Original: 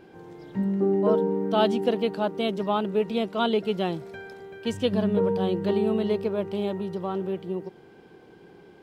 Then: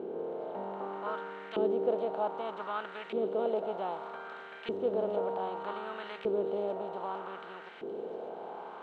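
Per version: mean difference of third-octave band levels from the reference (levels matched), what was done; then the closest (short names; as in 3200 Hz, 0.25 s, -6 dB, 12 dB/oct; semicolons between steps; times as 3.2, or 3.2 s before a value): 8.0 dB: per-bin compression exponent 0.4; LFO band-pass saw up 0.64 Hz 360–2100 Hz; thin delay 0.47 s, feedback 63%, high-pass 5000 Hz, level -5.5 dB; gain -6.5 dB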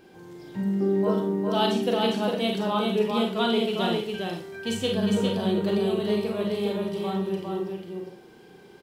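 6.0 dB: high shelf 3600 Hz +11.5 dB; echo 0.405 s -3.5 dB; Schroeder reverb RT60 0.38 s, combs from 31 ms, DRR 1.5 dB; gain -4 dB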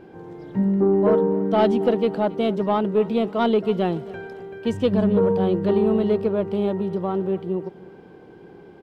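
2.5 dB: high shelf 2100 Hz -10.5 dB; soft clip -14.5 dBFS, distortion -22 dB; feedback echo 0.274 s, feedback 43%, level -20 dB; gain +6 dB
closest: third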